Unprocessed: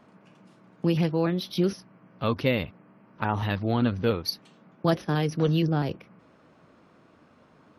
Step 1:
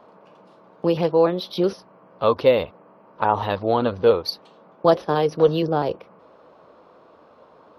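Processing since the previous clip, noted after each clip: graphic EQ 125/250/500/1000/2000/4000/8000 Hz -5/-3/+11/+9/-4/+6/-8 dB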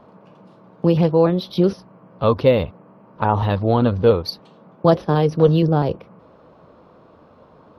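tone controls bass +13 dB, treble -1 dB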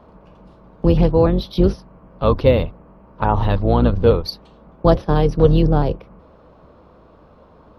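octave divider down 2 oct, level 0 dB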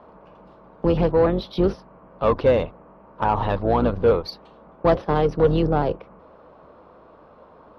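overdrive pedal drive 16 dB, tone 1.3 kHz, clips at -1 dBFS; trim -5.5 dB

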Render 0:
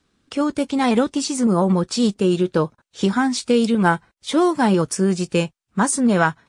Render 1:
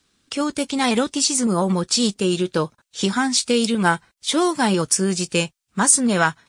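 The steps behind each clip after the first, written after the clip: treble shelf 2.2 kHz +12 dB; trim -3 dB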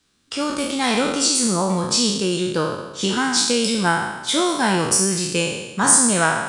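spectral sustain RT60 1.08 s; trim -2.5 dB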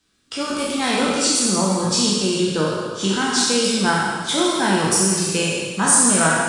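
plate-style reverb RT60 1.5 s, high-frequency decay 1×, DRR -0.5 dB; trim -2.5 dB

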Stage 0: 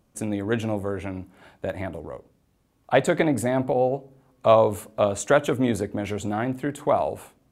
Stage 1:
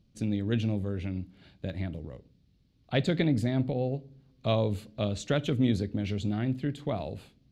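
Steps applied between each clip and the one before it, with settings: FFT filter 170 Hz 0 dB, 980 Hz -20 dB, 4.4 kHz +1 dB, 8.4 kHz -20 dB; trim +2 dB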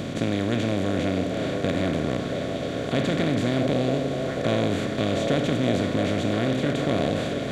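spectral levelling over time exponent 0.2; repeats whose band climbs or falls 678 ms, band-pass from 550 Hz, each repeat 1.4 oct, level -1 dB; trim -3.5 dB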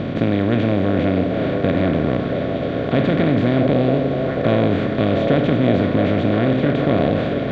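distance through air 330 m; trim +7.5 dB

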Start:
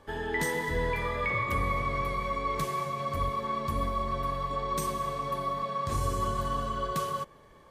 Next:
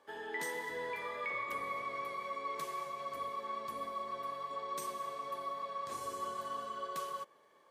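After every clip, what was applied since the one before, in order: high-pass 380 Hz 12 dB/octave; trim -8 dB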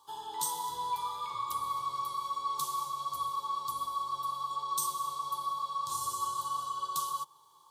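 FFT filter 150 Hz 0 dB, 220 Hz -17 dB, 350 Hz -11 dB, 620 Hz -22 dB, 940 Hz +8 dB, 1.3 kHz -5 dB, 1.9 kHz -30 dB, 3.5 kHz +5 dB, 5.1 kHz +5 dB, 9.2 kHz +9 dB; trim +5.5 dB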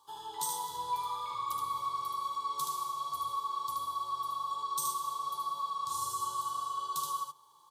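delay 75 ms -4 dB; trim -2.5 dB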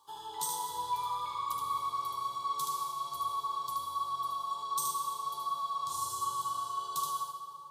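reverberation RT60 2.8 s, pre-delay 90 ms, DRR 7.5 dB

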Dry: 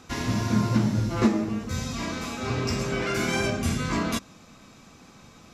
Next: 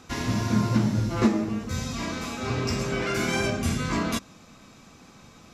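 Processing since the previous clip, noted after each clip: no audible change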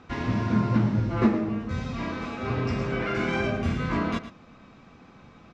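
low-pass 2.6 kHz 12 dB/octave; delay 112 ms -12.5 dB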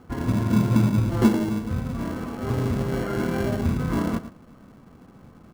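Bessel low-pass 1.2 kHz, order 4; in parallel at -5 dB: sample-and-hold 36×

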